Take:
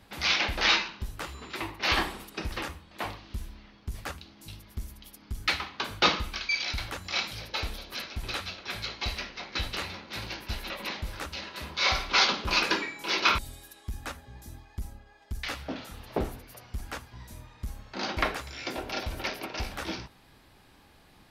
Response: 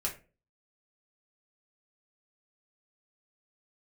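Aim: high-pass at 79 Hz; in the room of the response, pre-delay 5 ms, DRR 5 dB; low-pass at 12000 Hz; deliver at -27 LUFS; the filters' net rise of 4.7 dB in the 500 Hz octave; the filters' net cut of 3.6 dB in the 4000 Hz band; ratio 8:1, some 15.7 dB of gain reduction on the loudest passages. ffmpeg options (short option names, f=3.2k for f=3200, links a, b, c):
-filter_complex "[0:a]highpass=79,lowpass=12k,equalizer=f=500:t=o:g=6,equalizer=f=4k:t=o:g=-4.5,acompressor=threshold=-36dB:ratio=8,asplit=2[a][b];[1:a]atrim=start_sample=2205,adelay=5[c];[b][c]afir=irnorm=-1:irlink=0,volume=-8.5dB[d];[a][d]amix=inputs=2:normalize=0,volume=13dB"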